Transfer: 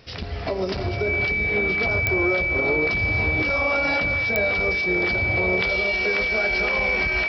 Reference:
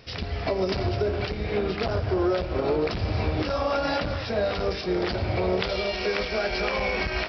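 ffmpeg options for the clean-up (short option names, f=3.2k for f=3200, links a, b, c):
-af "adeclick=t=4,bandreject=f=2.3k:w=30"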